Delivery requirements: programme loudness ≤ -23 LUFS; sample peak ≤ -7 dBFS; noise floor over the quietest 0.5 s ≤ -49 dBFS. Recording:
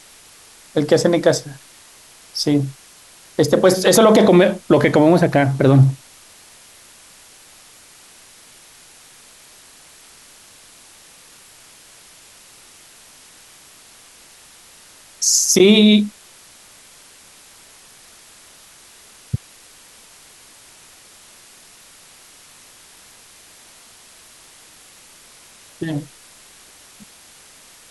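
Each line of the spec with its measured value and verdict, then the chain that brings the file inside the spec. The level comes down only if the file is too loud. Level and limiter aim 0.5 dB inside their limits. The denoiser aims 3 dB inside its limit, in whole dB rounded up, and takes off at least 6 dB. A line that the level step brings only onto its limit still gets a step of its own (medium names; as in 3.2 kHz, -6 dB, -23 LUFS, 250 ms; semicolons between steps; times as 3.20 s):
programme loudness -15.5 LUFS: fail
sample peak -2.5 dBFS: fail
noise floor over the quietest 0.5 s -46 dBFS: fail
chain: trim -8 dB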